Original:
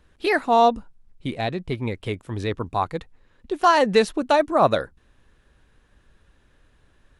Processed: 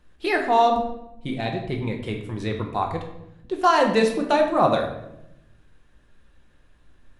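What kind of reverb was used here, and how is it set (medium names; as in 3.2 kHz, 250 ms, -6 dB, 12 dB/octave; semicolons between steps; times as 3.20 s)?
simulated room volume 260 m³, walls mixed, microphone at 0.89 m; trim -3 dB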